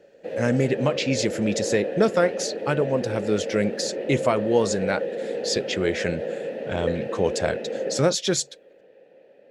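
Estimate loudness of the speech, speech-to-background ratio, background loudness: −25.0 LKFS, 5.0 dB, −30.0 LKFS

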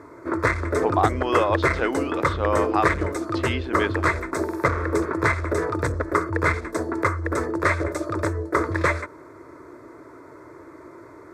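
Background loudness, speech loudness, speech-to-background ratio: −24.5 LKFS, −26.5 LKFS, −2.0 dB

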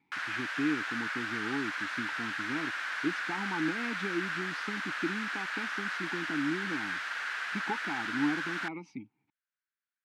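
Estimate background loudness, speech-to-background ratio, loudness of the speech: −34.5 LKFS, −3.5 dB, −38.0 LKFS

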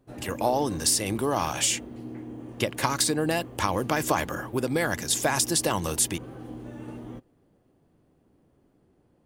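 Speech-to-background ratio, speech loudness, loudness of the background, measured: 14.5 dB, −26.0 LKFS, −40.5 LKFS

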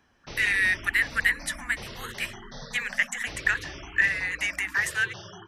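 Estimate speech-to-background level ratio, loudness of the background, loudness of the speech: 15.0 dB, −41.5 LKFS, −26.5 LKFS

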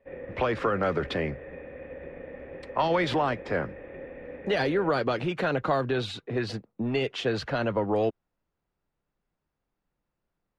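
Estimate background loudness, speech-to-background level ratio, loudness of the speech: −42.5 LKFS, 14.0 dB, −28.5 LKFS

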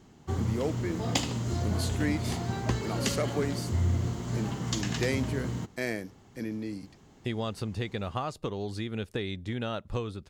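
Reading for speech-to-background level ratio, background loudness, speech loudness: −4.0 dB, −31.5 LKFS, −35.5 LKFS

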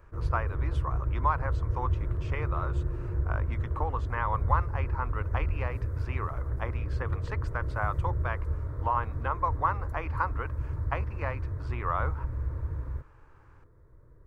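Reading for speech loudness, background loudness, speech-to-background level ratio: −35.0 LKFS, −33.0 LKFS, −2.0 dB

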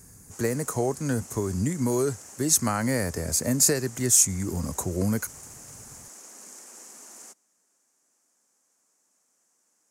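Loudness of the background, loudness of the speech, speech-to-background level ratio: −43.5 LKFS, −24.5 LKFS, 19.0 dB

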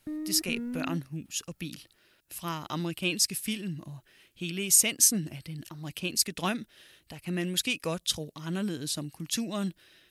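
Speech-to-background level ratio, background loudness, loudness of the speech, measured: 8.0 dB, −37.0 LKFS, −29.0 LKFS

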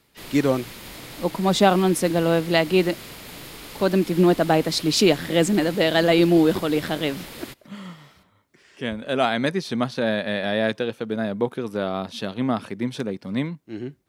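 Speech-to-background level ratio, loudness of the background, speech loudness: 16.0 dB, −38.0 LKFS, −22.0 LKFS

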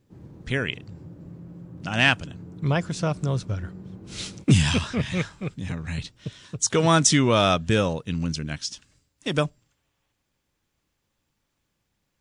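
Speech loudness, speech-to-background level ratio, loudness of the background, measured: −24.0 LKFS, 18.5 dB, −42.5 LKFS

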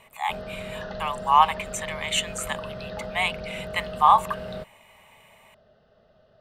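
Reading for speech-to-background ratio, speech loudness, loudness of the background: 12.5 dB, −24.0 LKFS, −36.5 LKFS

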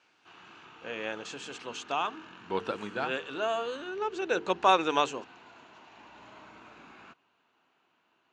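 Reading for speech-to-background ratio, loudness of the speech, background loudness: 20.0 dB, −31.0 LKFS, −51.0 LKFS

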